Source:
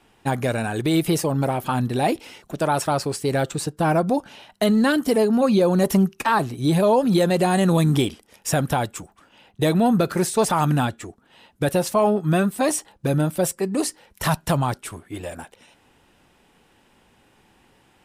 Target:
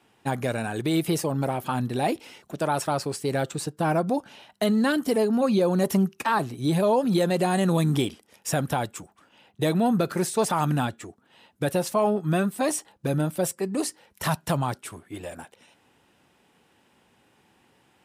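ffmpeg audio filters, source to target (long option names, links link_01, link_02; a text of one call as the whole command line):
ffmpeg -i in.wav -af "highpass=89,volume=-4dB" out.wav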